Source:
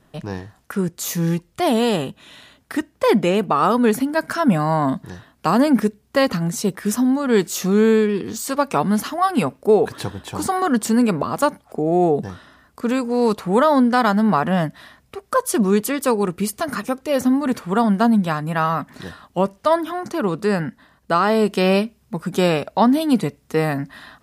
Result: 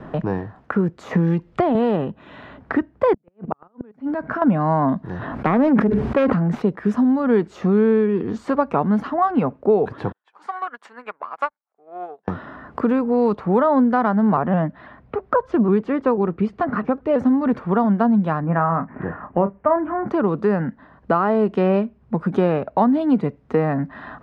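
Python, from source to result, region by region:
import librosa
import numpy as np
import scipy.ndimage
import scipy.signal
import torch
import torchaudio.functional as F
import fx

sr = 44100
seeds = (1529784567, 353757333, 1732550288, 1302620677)

y = fx.chain(x, sr, fx.high_shelf(hz=8500.0, db=-7.5),
    fx.band_squash(depth_pct=100), at=(1.11, 1.75))
y = fx.chain(y, sr, fx.high_shelf(hz=3600.0, db=-7.0),
    fx.level_steps(step_db=16),
    fx.gate_flip(shuts_db=-17.0, range_db=-41), at=(3.13, 4.42))
y = fx.chain(y, sr, fx.self_delay(depth_ms=0.26),
    fx.sustainer(db_per_s=26.0), at=(5.03, 6.62))
y = fx.chain(y, sr, fx.self_delay(depth_ms=0.065),
    fx.highpass(hz=1400.0, slope=12),
    fx.upward_expand(threshold_db=-47.0, expansion=2.5), at=(10.12, 12.28))
y = fx.chain(y, sr, fx.air_absorb(metres=140.0),
    fx.vibrato_shape(shape='saw_up', rate_hz=6.1, depth_cents=100.0), at=(14.37, 17.19))
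y = fx.chain(y, sr, fx.steep_lowpass(hz=2400.0, slope=36),
    fx.doubler(ms=30.0, db=-10.5), at=(18.4, 20.08))
y = scipy.signal.sosfilt(scipy.signal.butter(2, 1400.0, 'lowpass', fs=sr, output='sos'), y)
y = fx.band_squash(y, sr, depth_pct=70)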